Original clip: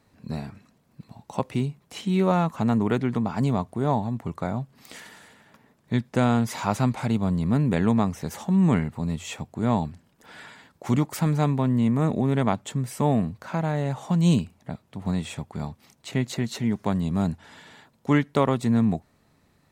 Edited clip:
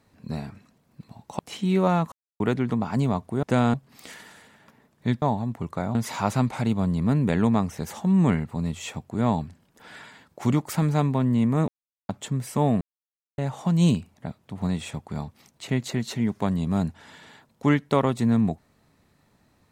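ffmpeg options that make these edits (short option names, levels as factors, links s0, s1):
-filter_complex "[0:a]asplit=12[s0][s1][s2][s3][s4][s5][s6][s7][s8][s9][s10][s11];[s0]atrim=end=1.392[s12];[s1]atrim=start=1.828:end=2.56,asetpts=PTS-STARTPTS,afade=t=out:st=0.728:d=0.004:c=hsin[s13];[s2]atrim=start=2.56:end=2.84,asetpts=PTS-STARTPTS,volume=0[s14];[s3]atrim=start=2.84:end=3.872,asetpts=PTS-STARTPTS,afade=t=in:d=0.004:c=hsin[s15];[s4]atrim=start=6.078:end=6.392[s16];[s5]atrim=start=4.598:end=6.082[s17];[s6]atrim=start=3.868:end=4.602[s18];[s7]atrim=start=6.388:end=12.12,asetpts=PTS-STARTPTS,afade=t=out:st=5.728:d=0.004:c=hsin[s19];[s8]atrim=start=12.12:end=12.53,asetpts=PTS-STARTPTS,volume=0[s20];[s9]atrim=start=12.53:end=13.25,asetpts=PTS-STARTPTS,afade=t=in:d=0.004:c=hsin,afade=t=out:st=0.716:d=0.004:c=hsin[s21];[s10]atrim=start=13.25:end=13.82,asetpts=PTS-STARTPTS,volume=0[s22];[s11]atrim=start=13.82,asetpts=PTS-STARTPTS,afade=t=in:d=0.004:c=hsin[s23];[s13][s14][s15]concat=n=3:v=0:a=1[s24];[s12][s24]acrossfade=d=0.004:c1=hsin:c2=hsin[s25];[s25][s16]acrossfade=d=0.004:c1=hsin:c2=hsin[s26];[s26][s17]acrossfade=d=0.004:c1=hsin:c2=hsin[s27];[s27][s18]acrossfade=d=0.004:c1=hsin:c2=hsin[s28];[s19][s20][s21][s22][s23]concat=n=5:v=0:a=1[s29];[s28][s29]acrossfade=d=0.004:c1=hsin:c2=hsin"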